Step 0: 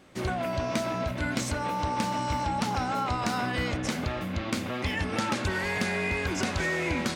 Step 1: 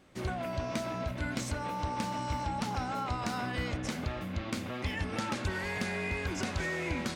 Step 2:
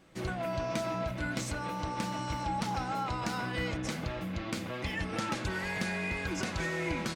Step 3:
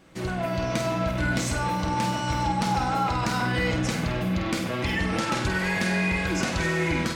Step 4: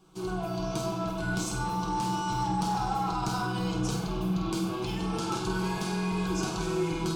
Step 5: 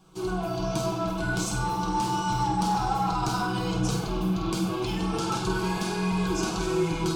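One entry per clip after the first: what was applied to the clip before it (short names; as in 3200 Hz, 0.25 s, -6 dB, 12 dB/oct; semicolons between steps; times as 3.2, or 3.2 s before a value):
low shelf 86 Hz +6 dB; gain -6 dB
comb 6.1 ms, depth 41%
in parallel at -2 dB: limiter -29.5 dBFS, peak gain reduction 7.5 dB; on the sum: AGC gain up to 3.5 dB; flutter echo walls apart 8.4 m, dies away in 0.49 s
fixed phaser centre 380 Hz, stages 8; in parallel at -4.5 dB: one-sided clip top -24.5 dBFS; on the sum: reverb RT60 1.3 s, pre-delay 3 ms, DRR 2.5 dB; gain -7.5 dB
flange 1.3 Hz, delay 1.1 ms, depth 2.9 ms, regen -60%; gain +7.5 dB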